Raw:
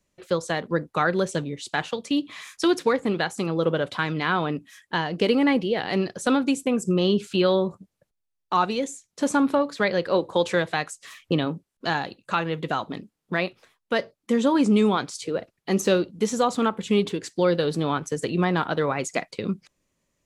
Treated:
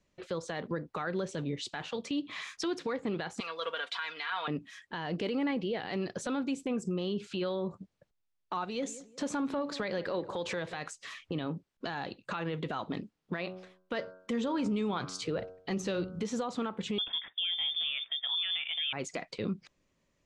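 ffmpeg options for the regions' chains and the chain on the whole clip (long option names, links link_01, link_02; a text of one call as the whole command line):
ffmpeg -i in.wav -filter_complex "[0:a]asettb=1/sr,asplit=3[link_01][link_02][link_03];[link_01]atrim=end=3.404[link_04];[link_02]atrim=start=3.4:end=4.48,asetpts=PTS-STARTPTS,afade=type=in:duration=0.004:curve=qsin,afade=type=out:start_time=1.076:duration=0.004:curve=qsin,highpass=1300,aecho=1:1:4.3:0.76,atrim=end_sample=47628[link_05];[link_03]atrim=start=4.476[link_06];[link_04][link_05]acrossfade=duration=0.004:curve1=hsin:curve2=qsin[link_07];[link_07][link_06]acrossfade=duration=0.004:curve1=qsin:curve2=hsin,asettb=1/sr,asplit=3[link_08][link_09][link_10];[link_08]atrim=end=8.644[link_11];[link_09]atrim=start=8.64:end=10.89,asetpts=PTS-STARTPTS,afade=type=in:duration=0.004:curve=qsin,afade=type=out:start_time=2.246:duration=0.004:curve=qsin,highshelf=frequency=5900:gain=3.5,acompressor=threshold=-29dB:ratio=3:attack=3.2:release=140:knee=1:detection=peak,asplit=2[link_12][link_13];[link_13]adelay=181,lowpass=frequency=1300:poles=1,volume=-17dB,asplit=2[link_14][link_15];[link_15]adelay=181,lowpass=frequency=1300:poles=1,volume=0.37,asplit=2[link_16][link_17];[link_17]adelay=181,lowpass=frequency=1300:poles=1,volume=0.37[link_18];[link_12][link_14][link_16][link_18]amix=inputs=4:normalize=0,atrim=end_sample=99225[link_19];[link_10]atrim=start=10.886[link_20];[link_11][link_19]acrossfade=duration=0.004:curve1=hsin:curve2=qsin[link_21];[link_21][link_20]acrossfade=duration=0.004:curve1=qsin:curve2=hsin,asettb=1/sr,asplit=3[link_22][link_23][link_24];[link_22]atrim=end=13.384[link_25];[link_23]atrim=start=13.38:end=16.23,asetpts=PTS-STARTPTS,afade=type=in:duration=0.004:curve=qsin,afade=type=out:start_time=2.846:duration=0.004:curve=qsin,asubboost=boost=5.5:cutoff=130,bandreject=frequency=92.61:width_type=h:width=4,bandreject=frequency=185.22:width_type=h:width=4,bandreject=frequency=277.83:width_type=h:width=4,bandreject=frequency=370.44:width_type=h:width=4,bandreject=frequency=463.05:width_type=h:width=4,bandreject=frequency=555.66:width_type=h:width=4,bandreject=frequency=648.27:width_type=h:width=4,bandreject=frequency=740.88:width_type=h:width=4,bandreject=frequency=833.49:width_type=h:width=4,bandreject=frequency=926.1:width_type=h:width=4,bandreject=frequency=1018.71:width_type=h:width=4,bandreject=frequency=1111.32:width_type=h:width=4,bandreject=frequency=1203.93:width_type=h:width=4,bandreject=frequency=1296.54:width_type=h:width=4,bandreject=frequency=1389.15:width_type=h:width=4,bandreject=frequency=1481.76:width_type=h:width=4,bandreject=frequency=1574.37:width_type=h:width=4[link_26];[link_24]atrim=start=16.226[link_27];[link_25][link_26]acrossfade=duration=0.004:curve1=hsin:curve2=qsin[link_28];[link_28][link_27]acrossfade=duration=0.004:curve1=qsin:curve2=hsin,asettb=1/sr,asplit=3[link_29][link_30][link_31];[link_29]atrim=end=16.984[link_32];[link_30]atrim=start=16.98:end=18.93,asetpts=PTS-STARTPTS,afade=type=in:duration=0.004:curve=qsin,afade=type=out:start_time=1.946:duration=0.004:curve=qsin,lowpass=frequency=3100:width_type=q:width=0.5098,lowpass=frequency=3100:width_type=q:width=0.6013,lowpass=frequency=3100:width_type=q:width=0.9,lowpass=frequency=3100:width_type=q:width=2.563,afreqshift=-3700,highshelf=frequency=2400:gain=10[link_33];[link_31]atrim=start=18.926[link_34];[link_32][link_33]acrossfade=duration=0.004:curve1=hsin:curve2=qsin[link_35];[link_35][link_34]acrossfade=duration=0.004:curve1=qsin:curve2=hsin,lowpass=5300,acompressor=threshold=-27dB:ratio=6,alimiter=level_in=1dB:limit=-24dB:level=0:latency=1:release=13,volume=-1dB" out.wav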